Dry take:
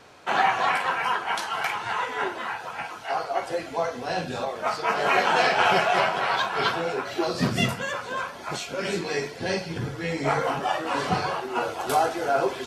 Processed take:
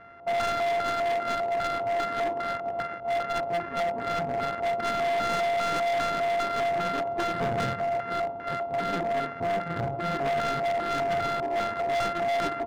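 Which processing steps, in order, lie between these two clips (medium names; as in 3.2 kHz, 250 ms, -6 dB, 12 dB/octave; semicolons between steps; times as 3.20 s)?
sorted samples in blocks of 64 samples; treble shelf 6.1 kHz -8 dB; peak limiter -14.5 dBFS, peak gain reduction 7 dB; LFO low-pass square 2.5 Hz 790–1700 Hz; overload inside the chain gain 24.5 dB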